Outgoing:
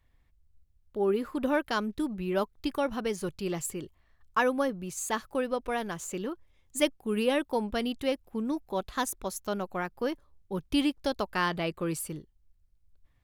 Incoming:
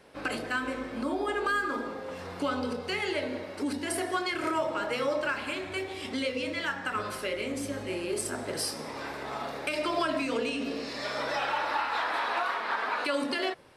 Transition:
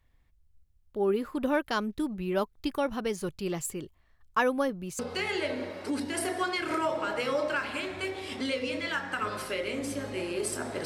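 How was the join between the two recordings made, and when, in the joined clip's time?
outgoing
4.99 s: go over to incoming from 2.72 s

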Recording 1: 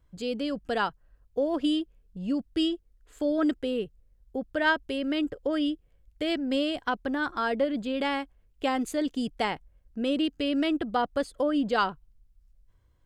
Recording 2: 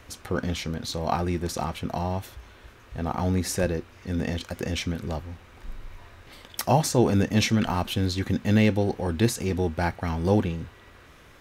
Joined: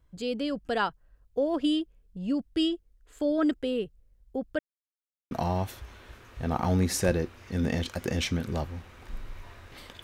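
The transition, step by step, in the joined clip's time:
recording 1
4.59–5.31 s: mute
5.31 s: go over to recording 2 from 1.86 s

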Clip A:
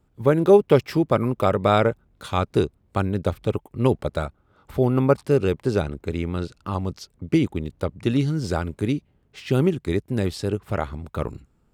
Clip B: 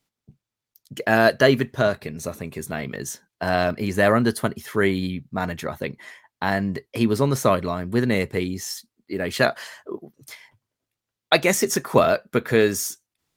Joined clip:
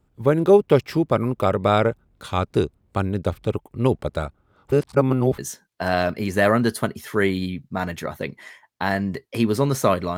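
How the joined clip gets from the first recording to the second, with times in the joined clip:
clip A
4.72–5.38 s: reverse
5.38 s: go over to clip B from 2.99 s

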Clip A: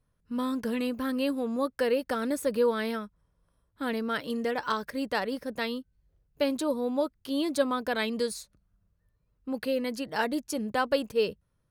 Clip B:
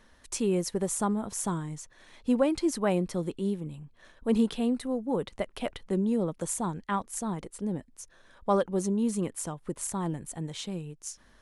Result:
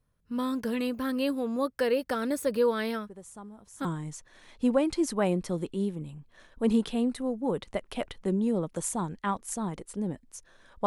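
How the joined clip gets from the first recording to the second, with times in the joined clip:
clip A
3.07 s: add clip B from 0.72 s 0.78 s -17 dB
3.85 s: go over to clip B from 1.50 s

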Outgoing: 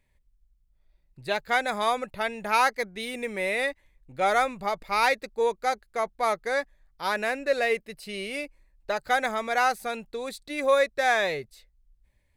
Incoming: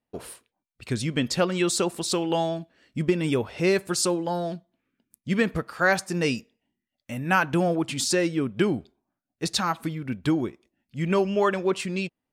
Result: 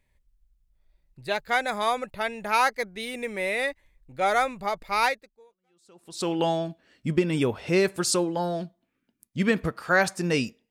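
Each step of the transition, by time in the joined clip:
outgoing
5.67 s: go over to incoming from 1.58 s, crossfade 1.22 s exponential

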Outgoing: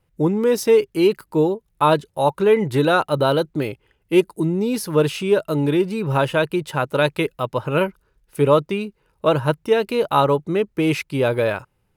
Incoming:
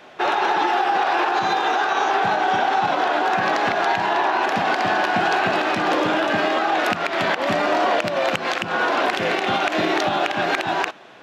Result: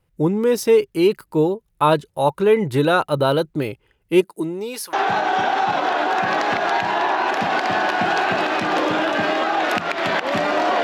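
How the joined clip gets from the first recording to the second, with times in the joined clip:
outgoing
4.21–4.93 s: high-pass 160 Hz -> 960 Hz
4.93 s: go over to incoming from 2.08 s

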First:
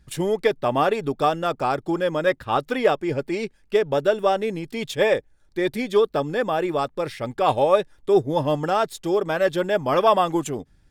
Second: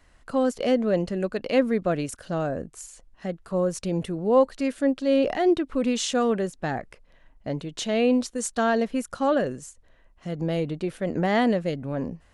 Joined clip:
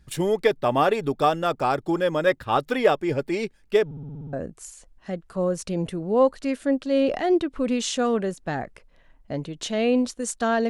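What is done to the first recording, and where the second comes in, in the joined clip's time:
first
3.85 s: stutter in place 0.06 s, 8 plays
4.33 s: go over to second from 2.49 s

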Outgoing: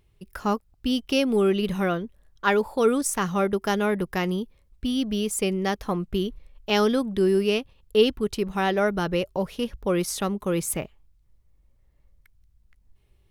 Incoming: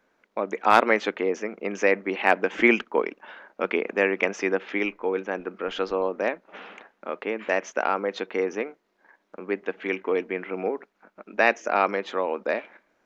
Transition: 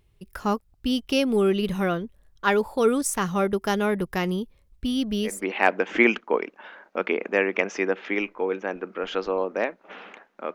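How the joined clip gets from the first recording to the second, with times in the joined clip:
outgoing
5.34 s: go over to incoming from 1.98 s, crossfade 0.22 s

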